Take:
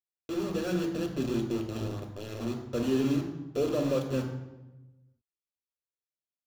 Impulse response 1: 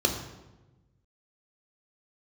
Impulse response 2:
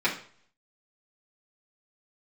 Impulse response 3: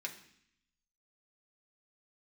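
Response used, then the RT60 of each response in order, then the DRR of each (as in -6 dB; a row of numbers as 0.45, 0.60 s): 1; 1.1, 0.50, 0.65 s; 3.5, -8.5, -0.5 dB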